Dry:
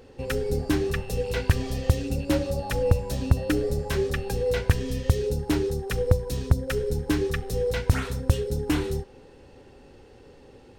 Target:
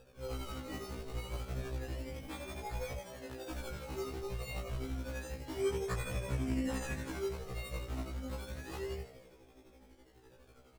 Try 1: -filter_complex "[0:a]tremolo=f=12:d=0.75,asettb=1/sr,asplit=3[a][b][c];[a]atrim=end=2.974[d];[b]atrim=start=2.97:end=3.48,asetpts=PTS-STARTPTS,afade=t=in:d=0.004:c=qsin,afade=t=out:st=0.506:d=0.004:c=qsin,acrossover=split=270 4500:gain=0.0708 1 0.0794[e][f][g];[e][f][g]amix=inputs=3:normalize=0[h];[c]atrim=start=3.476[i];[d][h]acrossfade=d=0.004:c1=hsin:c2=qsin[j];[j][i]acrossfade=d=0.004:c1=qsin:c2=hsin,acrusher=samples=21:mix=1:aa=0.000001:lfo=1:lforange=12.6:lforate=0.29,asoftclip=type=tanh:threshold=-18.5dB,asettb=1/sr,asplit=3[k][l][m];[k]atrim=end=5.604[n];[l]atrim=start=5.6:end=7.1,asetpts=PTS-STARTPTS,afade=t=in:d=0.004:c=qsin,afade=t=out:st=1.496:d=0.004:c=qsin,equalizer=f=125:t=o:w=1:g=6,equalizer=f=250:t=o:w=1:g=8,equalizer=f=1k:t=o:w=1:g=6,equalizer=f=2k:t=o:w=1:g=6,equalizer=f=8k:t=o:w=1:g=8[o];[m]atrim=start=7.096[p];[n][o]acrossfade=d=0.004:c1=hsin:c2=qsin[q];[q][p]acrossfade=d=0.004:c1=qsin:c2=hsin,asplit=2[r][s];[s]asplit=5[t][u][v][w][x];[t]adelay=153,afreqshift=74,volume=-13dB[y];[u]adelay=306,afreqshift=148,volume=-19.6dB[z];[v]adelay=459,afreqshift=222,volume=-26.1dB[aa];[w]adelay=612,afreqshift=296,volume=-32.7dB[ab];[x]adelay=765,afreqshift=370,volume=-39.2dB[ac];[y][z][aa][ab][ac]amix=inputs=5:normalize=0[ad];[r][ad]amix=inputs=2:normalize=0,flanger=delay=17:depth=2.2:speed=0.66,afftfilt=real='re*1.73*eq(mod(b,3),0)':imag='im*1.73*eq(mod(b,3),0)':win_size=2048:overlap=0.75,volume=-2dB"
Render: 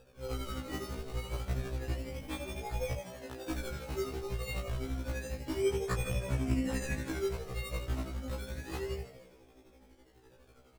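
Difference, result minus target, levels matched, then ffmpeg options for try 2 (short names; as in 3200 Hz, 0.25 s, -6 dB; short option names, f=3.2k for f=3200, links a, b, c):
soft clip: distortion -6 dB
-filter_complex "[0:a]tremolo=f=12:d=0.75,asettb=1/sr,asplit=3[a][b][c];[a]atrim=end=2.974[d];[b]atrim=start=2.97:end=3.48,asetpts=PTS-STARTPTS,afade=t=in:d=0.004:c=qsin,afade=t=out:st=0.506:d=0.004:c=qsin,acrossover=split=270 4500:gain=0.0708 1 0.0794[e][f][g];[e][f][g]amix=inputs=3:normalize=0[h];[c]atrim=start=3.476[i];[d][h]acrossfade=d=0.004:c1=hsin:c2=qsin[j];[j][i]acrossfade=d=0.004:c1=qsin:c2=hsin,acrusher=samples=21:mix=1:aa=0.000001:lfo=1:lforange=12.6:lforate=0.29,asoftclip=type=tanh:threshold=-28.5dB,asettb=1/sr,asplit=3[k][l][m];[k]atrim=end=5.604[n];[l]atrim=start=5.6:end=7.1,asetpts=PTS-STARTPTS,afade=t=in:d=0.004:c=qsin,afade=t=out:st=1.496:d=0.004:c=qsin,equalizer=f=125:t=o:w=1:g=6,equalizer=f=250:t=o:w=1:g=8,equalizer=f=1k:t=o:w=1:g=6,equalizer=f=2k:t=o:w=1:g=6,equalizer=f=8k:t=o:w=1:g=8[o];[m]atrim=start=7.096[p];[n][o]acrossfade=d=0.004:c1=hsin:c2=qsin[q];[q][p]acrossfade=d=0.004:c1=qsin:c2=hsin,asplit=2[r][s];[s]asplit=5[t][u][v][w][x];[t]adelay=153,afreqshift=74,volume=-13dB[y];[u]adelay=306,afreqshift=148,volume=-19.6dB[z];[v]adelay=459,afreqshift=222,volume=-26.1dB[aa];[w]adelay=612,afreqshift=296,volume=-32.7dB[ab];[x]adelay=765,afreqshift=370,volume=-39.2dB[ac];[y][z][aa][ab][ac]amix=inputs=5:normalize=0[ad];[r][ad]amix=inputs=2:normalize=0,flanger=delay=17:depth=2.2:speed=0.66,afftfilt=real='re*1.73*eq(mod(b,3),0)':imag='im*1.73*eq(mod(b,3),0)':win_size=2048:overlap=0.75,volume=-2dB"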